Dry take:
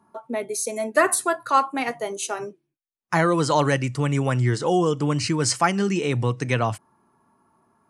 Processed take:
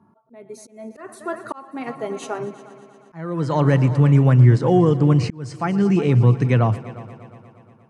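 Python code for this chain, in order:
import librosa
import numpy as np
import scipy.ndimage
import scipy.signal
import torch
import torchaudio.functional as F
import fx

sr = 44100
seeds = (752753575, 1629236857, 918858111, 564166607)

p1 = scipy.signal.sosfilt(scipy.signal.butter(2, 100.0, 'highpass', fs=sr, output='sos'), x)
p2 = fx.riaa(p1, sr, side='playback')
p3 = p2 + fx.echo_heads(p2, sr, ms=118, heads='all three', feedback_pct=55, wet_db=-21, dry=0)
y = fx.auto_swell(p3, sr, attack_ms=651.0)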